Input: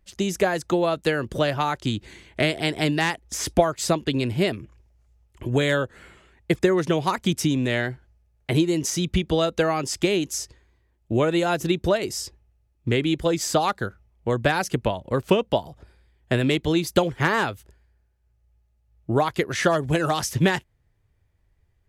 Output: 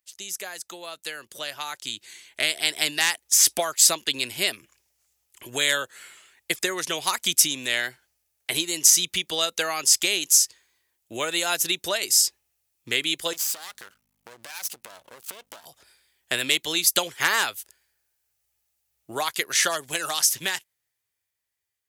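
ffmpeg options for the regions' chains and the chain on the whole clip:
-filter_complex "[0:a]asettb=1/sr,asplit=3[a][b][c];[a]atrim=end=13.334[d];[b]atrim=start=13.33:end=15.66,asetpts=PTS-STARTPTS,afade=t=in:d=0.004:c=qsin,afade=t=out:st=2.326:d=0.004:c=qsin,aeval=exprs='max(val(0),0)':c=same,acompressor=threshold=-32dB:ratio=12:attack=3.2:release=140:knee=1:detection=peak,aeval=exprs='val(0)+0.002*(sin(2*PI*50*n/s)+sin(2*PI*2*50*n/s)/2+sin(2*PI*3*50*n/s)/3+sin(2*PI*4*50*n/s)/4+sin(2*PI*5*50*n/s)/5)':c=same[e];[c]atrim=start=15.656[f];[d][e]acrossfade=d=0.004:c1=hsin:c2=qsin[g];[g][f]acrossfade=d=0.004:c1=qsin:c2=hsin,aderivative,dynaudnorm=f=410:g=11:m=11.5dB,volume=2.5dB"

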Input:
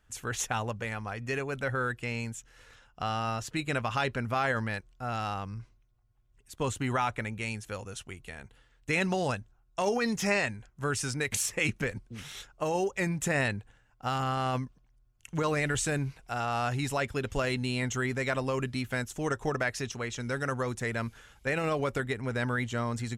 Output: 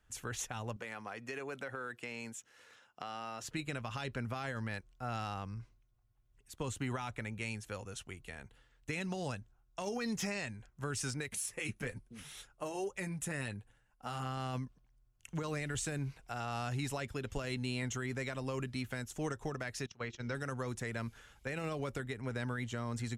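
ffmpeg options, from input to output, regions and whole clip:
-filter_complex "[0:a]asettb=1/sr,asplit=3[a][b][c];[a]atrim=end=0.764[d];[b]atrim=start=0.76:end=3.44,asetpts=PTS-STARTPTS,afade=t=in:d=0.004:c=qsin,afade=t=out:st=2.676:d=0.004:c=qsin,highpass=230,acompressor=threshold=-33dB:ratio=6:attack=3.2:release=140:knee=1:detection=peak[e];[c]atrim=start=3.436[f];[d][e]acrossfade=d=0.004:c1=hsin:c2=qsin[g];[g][f]acrossfade=d=0.004:c1=qsin:c2=hsin,asettb=1/sr,asplit=3[h][i][j];[h]atrim=end=11.284[k];[i]atrim=start=11.28:end=14.26,asetpts=PTS-STARTPTS,afade=t=in:d=0.004:c=qsin,afade=t=out:st=2.976:d=0.004:c=qsin,equalizer=f=10k:w=3.4:g=12.5,flanger=delay=3.7:depth=6.5:regen=-37:speed=1.1:shape=triangular[l];[j]atrim=start=14.256[m];[k][l]acrossfade=d=0.004:c1=hsin:c2=qsin[n];[n][m]acrossfade=d=0.004:c1=qsin:c2=hsin,asettb=1/sr,asplit=3[o][p][q];[o]atrim=end=19.864[r];[p]atrim=start=19.86:end=20.35,asetpts=PTS-STARTPTS,afade=t=in:d=0.004:c=qsin,afade=t=out:st=0.486:d=0.004:c=qsin,bandreject=f=50:t=h:w=6,bandreject=f=100:t=h:w=6,bandreject=f=150:t=h:w=6,bandreject=f=200:t=h:w=6,bandreject=f=250:t=h:w=6,bandreject=f=300:t=h:w=6,bandreject=f=350:t=h:w=6,bandreject=f=400:t=h:w=6,bandreject=f=450:t=h:w=6,agate=range=-18dB:threshold=-38dB:ratio=16:release=100:detection=peak,lowpass=f=5.8k:w=0.5412,lowpass=f=5.8k:w=1.3066[s];[q]atrim=start=20.346[t];[r][s]acrossfade=d=0.004:c1=hsin:c2=qsin[u];[u][t]acrossfade=d=0.004:c1=qsin:c2=hsin,acrossover=split=310|3000[v][w][x];[w]acompressor=threshold=-32dB:ratio=6[y];[v][y][x]amix=inputs=3:normalize=0,alimiter=limit=-23dB:level=0:latency=1:release=247,volume=-4dB"

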